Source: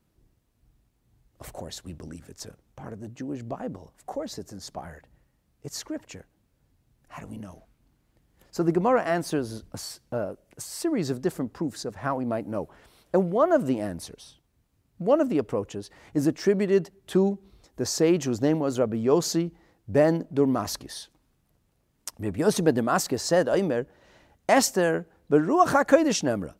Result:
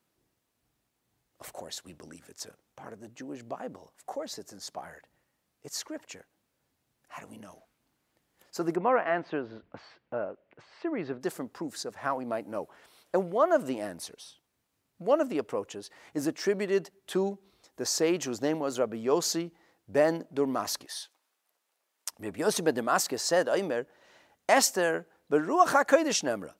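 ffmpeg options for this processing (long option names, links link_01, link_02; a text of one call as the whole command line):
ffmpeg -i in.wav -filter_complex "[0:a]asplit=3[link_01][link_02][link_03];[link_01]afade=type=out:start_time=8.75:duration=0.02[link_04];[link_02]lowpass=frequency=2800:width=0.5412,lowpass=frequency=2800:width=1.3066,afade=type=in:start_time=8.75:duration=0.02,afade=type=out:start_time=11.2:duration=0.02[link_05];[link_03]afade=type=in:start_time=11.2:duration=0.02[link_06];[link_04][link_05][link_06]amix=inputs=3:normalize=0,asettb=1/sr,asplit=3[link_07][link_08][link_09];[link_07]atrim=end=20.854[link_10];[link_08]atrim=start=20.85:end=22.1,asetpts=PTS-STARTPTS,afade=type=in:duration=0.004:curve=qsin,afade=type=out:start_time=1.246:duration=0.004:curve=qsin,highpass=590[link_11];[link_09]atrim=start=22.096[link_12];[link_10][link_11]acrossfade=duration=0.004:curve1=hsin:curve2=qsin[link_13];[link_13][link_12]acrossfade=duration=0.004:curve1=qsin:curve2=hsin,highpass=frequency=600:poles=1" out.wav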